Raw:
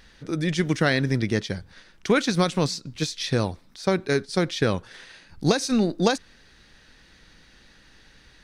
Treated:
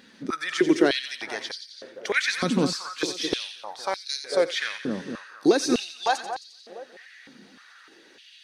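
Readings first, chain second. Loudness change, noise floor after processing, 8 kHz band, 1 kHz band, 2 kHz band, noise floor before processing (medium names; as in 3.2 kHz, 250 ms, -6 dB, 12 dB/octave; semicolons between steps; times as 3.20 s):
-1.5 dB, -53 dBFS, -0.5 dB, +1.0 dB, +0.5 dB, -55 dBFS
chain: coarse spectral quantiser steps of 15 dB; peak limiter -14.5 dBFS, peak gain reduction 7 dB; two-band feedback delay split 1.5 kHz, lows 231 ms, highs 88 ms, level -9 dB; step-sequenced high-pass 3.3 Hz 230–4500 Hz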